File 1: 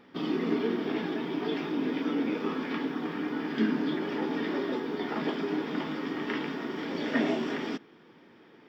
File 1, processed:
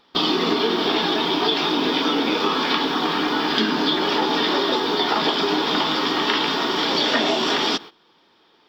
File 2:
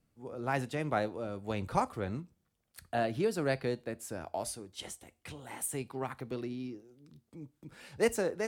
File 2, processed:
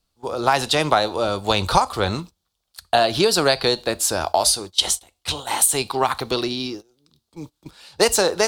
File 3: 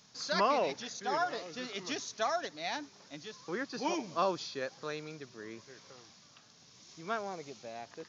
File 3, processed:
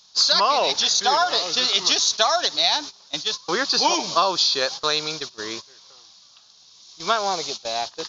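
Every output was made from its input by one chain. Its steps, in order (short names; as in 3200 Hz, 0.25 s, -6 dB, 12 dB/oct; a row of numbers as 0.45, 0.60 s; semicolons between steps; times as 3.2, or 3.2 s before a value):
gate -47 dBFS, range -17 dB; graphic EQ 125/250/500/1000/2000/4000 Hz -12/-10/-5/+3/-9/+11 dB; compressor 6:1, threshold -36 dBFS; match loudness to -20 LUFS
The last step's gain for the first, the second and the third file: +19.5, +23.0, +20.5 dB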